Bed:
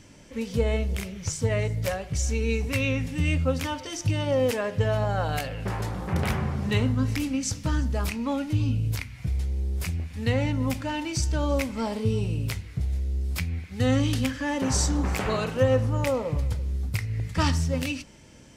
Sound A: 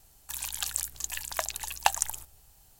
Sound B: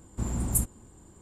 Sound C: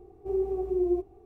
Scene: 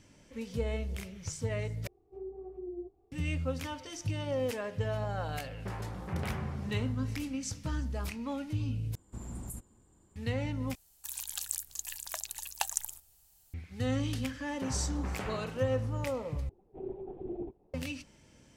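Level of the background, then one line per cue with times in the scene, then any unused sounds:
bed -9 dB
1.87 replace with C -14.5 dB + treble ducked by the level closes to 550 Hz, closed at -22.5 dBFS
8.95 replace with B -11.5 dB + limiter -20 dBFS
10.75 replace with A -12 dB + high shelf 3300 Hz +9 dB
16.49 replace with C -12.5 dB + LPC vocoder at 8 kHz whisper

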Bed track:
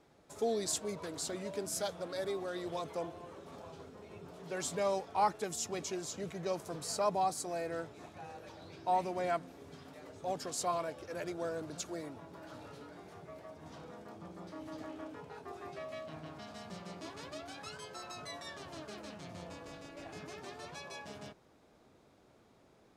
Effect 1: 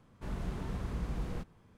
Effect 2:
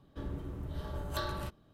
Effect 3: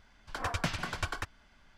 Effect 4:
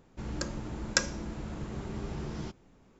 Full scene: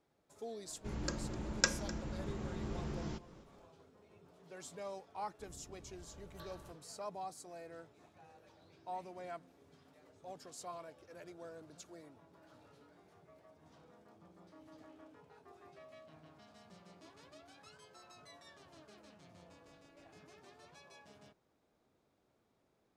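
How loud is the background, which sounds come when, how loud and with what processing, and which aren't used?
bed track -12.5 dB
0.67 add 4 -4 dB + echo 0.254 s -18.5 dB
5.23 add 2 -17.5 dB
not used: 1, 3

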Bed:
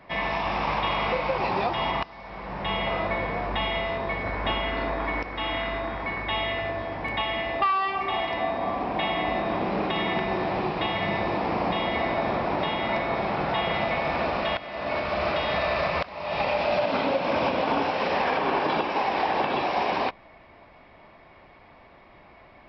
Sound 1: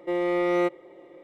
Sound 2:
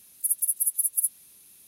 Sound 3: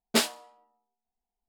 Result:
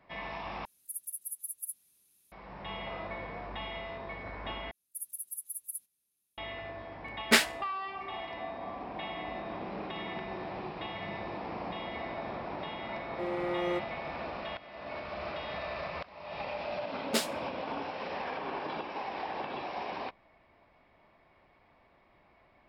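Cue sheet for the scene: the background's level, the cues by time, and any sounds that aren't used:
bed -12.5 dB
0.65 replace with 2 -15 dB
4.71 replace with 2 -15.5 dB + gate -48 dBFS, range -12 dB
7.17 add 3 -2 dB + bell 1900 Hz +11.5 dB 1 oct
13.11 add 1 -9.5 dB
16.99 add 3 -6.5 dB

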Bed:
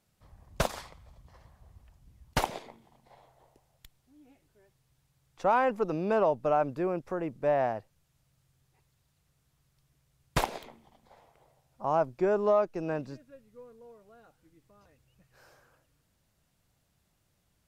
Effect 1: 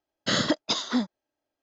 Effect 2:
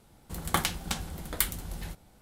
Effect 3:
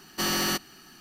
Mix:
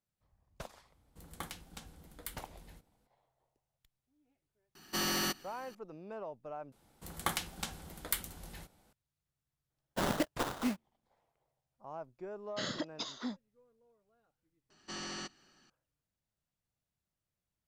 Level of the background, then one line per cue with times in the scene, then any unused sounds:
bed -18 dB
0.86 add 2 -17 dB + small resonant body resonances 280/480 Hz, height 7 dB, ringing for 90 ms
4.75 add 3 -6.5 dB
6.72 replace with 2 -6.5 dB + low shelf 170 Hz -7 dB
9.7 add 1 -8 dB + sample-rate reducer 2400 Hz, jitter 20%
12.3 add 1 -14 dB
14.7 add 3 -15.5 dB + steep low-pass 8000 Hz 48 dB/oct

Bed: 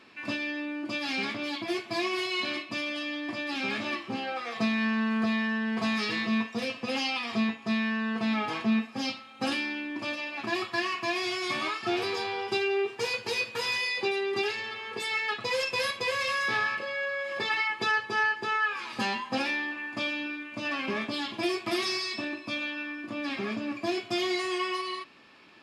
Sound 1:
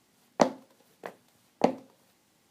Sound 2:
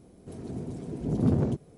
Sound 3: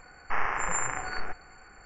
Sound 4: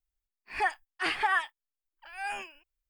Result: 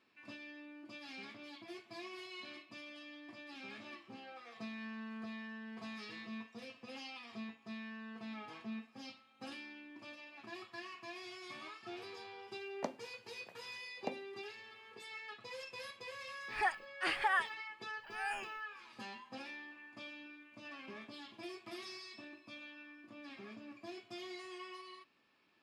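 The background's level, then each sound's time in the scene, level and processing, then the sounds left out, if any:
bed -18.5 dB
12.43 add 1 -17.5 dB
16.01 add 4 -5.5 dB
not used: 2, 3

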